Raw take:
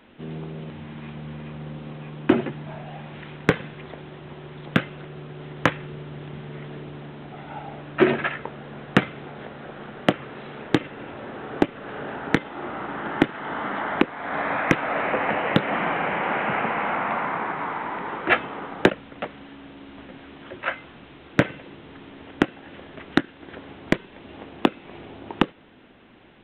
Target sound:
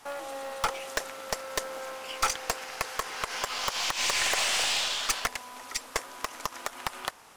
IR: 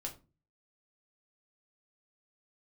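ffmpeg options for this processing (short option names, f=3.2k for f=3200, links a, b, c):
-af "asetrate=158319,aresample=44100,acrusher=bits=7:mode=log:mix=0:aa=0.000001,aeval=exprs='(tanh(8.91*val(0)+0.4)-tanh(0.4))/8.91':c=same"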